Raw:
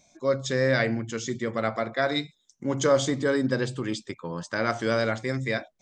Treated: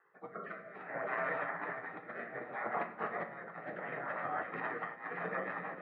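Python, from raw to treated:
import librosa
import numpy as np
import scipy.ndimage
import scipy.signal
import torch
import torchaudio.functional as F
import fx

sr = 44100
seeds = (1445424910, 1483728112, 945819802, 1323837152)

p1 = fx.low_shelf(x, sr, hz=500.0, db=-6.0)
p2 = fx.spec_gate(p1, sr, threshold_db=-20, keep='weak')
p3 = (np.mod(10.0 ** (32.0 / 20.0) * p2 + 1.0, 2.0) - 1.0) / 10.0 ** (32.0 / 20.0)
p4 = p2 + (p3 * librosa.db_to_amplitude(-5.5))
p5 = scipy.signal.sosfilt(scipy.signal.ellip(4, 1.0, 80, 1800.0, 'lowpass', fs=sr, output='sos'), p4)
p6 = p5 + fx.echo_split(p5, sr, split_hz=680.0, low_ms=348, high_ms=559, feedback_pct=52, wet_db=-10.0, dry=0)
p7 = fx.over_compress(p6, sr, threshold_db=-48.0, ratio=-0.5)
p8 = scipy.signal.sosfilt(scipy.signal.butter(4, 170.0, 'highpass', fs=sr, output='sos'), p7)
p9 = p8 + 0.31 * np.pad(p8, (int(1.6 * sr / 1000.0), 0))[:len(p8)]
p10 = fx.room_shoebox(p9, sr, seeds[0], volume_m3=170.0, walls='mixed', distance_m=0.47)
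p11 = fx.rotary_switch(p10, sr, hz=0.6, then_hz=6.3, switch_at_s=4.08)
y = p11 * librosa.db_to_amplitude(10.0)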